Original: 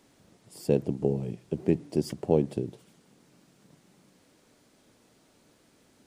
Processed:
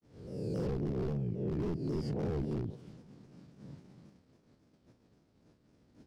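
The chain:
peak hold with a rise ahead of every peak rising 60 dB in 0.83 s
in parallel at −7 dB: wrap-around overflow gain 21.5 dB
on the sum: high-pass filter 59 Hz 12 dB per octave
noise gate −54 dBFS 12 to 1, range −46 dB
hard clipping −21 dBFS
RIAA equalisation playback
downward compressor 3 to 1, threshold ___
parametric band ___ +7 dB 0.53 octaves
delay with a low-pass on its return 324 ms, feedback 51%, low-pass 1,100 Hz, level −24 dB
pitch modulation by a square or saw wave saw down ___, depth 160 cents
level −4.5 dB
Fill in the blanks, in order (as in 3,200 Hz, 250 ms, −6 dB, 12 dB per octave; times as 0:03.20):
−31 dBFS, 5,100 Hz, 3.7 Hz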